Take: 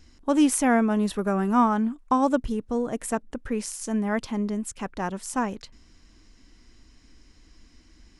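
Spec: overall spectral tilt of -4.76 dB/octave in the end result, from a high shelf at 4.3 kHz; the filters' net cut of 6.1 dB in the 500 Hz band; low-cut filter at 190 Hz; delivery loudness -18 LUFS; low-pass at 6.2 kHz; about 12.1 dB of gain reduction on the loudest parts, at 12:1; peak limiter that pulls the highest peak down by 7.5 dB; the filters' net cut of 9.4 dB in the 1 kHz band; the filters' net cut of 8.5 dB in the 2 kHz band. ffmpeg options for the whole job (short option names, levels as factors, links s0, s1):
-af "highpass=190,lowpass=6200,equalizer=f=500:t=o:g=-4.5,equalizer=f=1000:t=o:g=-9,equalizer=f=2000:t=o:g=-8,highshelf=f=4300:g=4.5,acompressor=threshold=0.0316:ratio=12,volume=8.91,alimiter=limit=0.355:level=0:latency=1"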